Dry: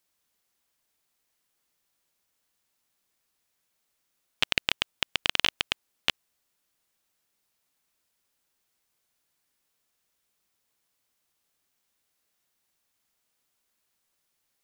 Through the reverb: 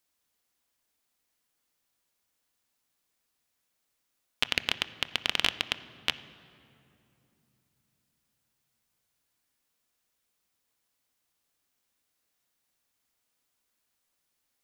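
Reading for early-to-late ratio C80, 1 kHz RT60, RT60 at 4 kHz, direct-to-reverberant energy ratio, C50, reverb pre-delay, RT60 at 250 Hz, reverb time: 16.0 dB, 2.6 s, 1.7 s, 12.0 dB, 15.0 dB, 3 ms, 4.5 s, 2.8 s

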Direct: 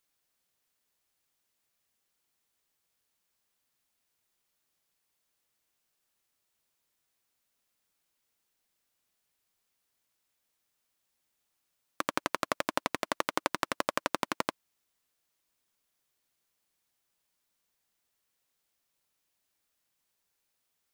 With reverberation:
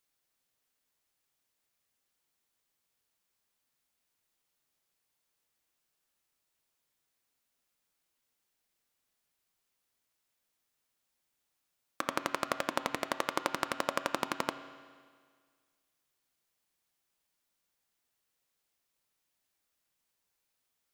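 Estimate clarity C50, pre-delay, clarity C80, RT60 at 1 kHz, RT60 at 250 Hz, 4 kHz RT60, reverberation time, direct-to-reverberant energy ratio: 9.5 dB, 8 ms, 10.5 dB, 1.8 s, 1.8 s, 1.8 s, 1.8 s, 8.0 dB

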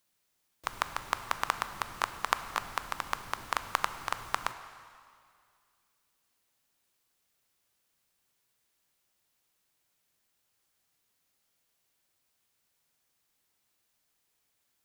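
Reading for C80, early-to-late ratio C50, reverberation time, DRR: 12.0 dB, 11.0 dB, 2.2 s, 10.0 dB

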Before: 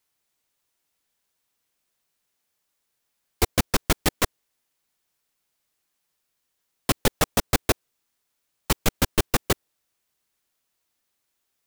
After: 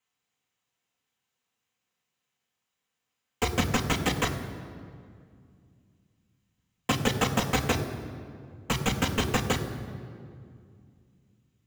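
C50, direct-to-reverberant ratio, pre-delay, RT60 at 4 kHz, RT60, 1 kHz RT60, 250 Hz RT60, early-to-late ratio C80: 9.5 dB, 2.0 dB, 3 ms, 1.4 s, 2.2 s, 2.1 s, 3.2 s, 10.0 dB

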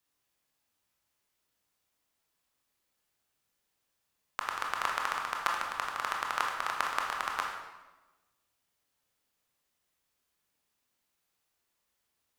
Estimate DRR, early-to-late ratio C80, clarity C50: −0.5 dB, 5.5 dB, 3.0 dB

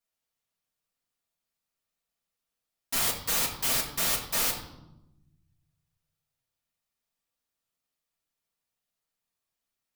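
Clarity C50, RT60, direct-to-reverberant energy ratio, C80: 7.5 dB, 0.95 s, −6.5 dB, 10.0 dB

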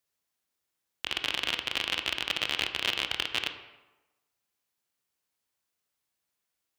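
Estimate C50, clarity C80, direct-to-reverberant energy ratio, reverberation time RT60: 9.5 dB, 11.0 dB, 7.0 dB, 1.1 s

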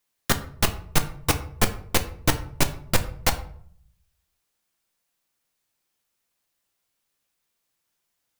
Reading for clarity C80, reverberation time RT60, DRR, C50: 17.0 dB, 0.60 s, 7.0 dB, 13.5 dB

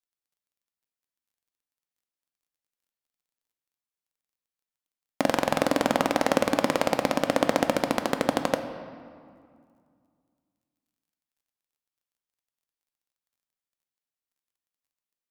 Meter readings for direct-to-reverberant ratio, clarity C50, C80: 6.5 dB, 9.0 dB, 10.0 dB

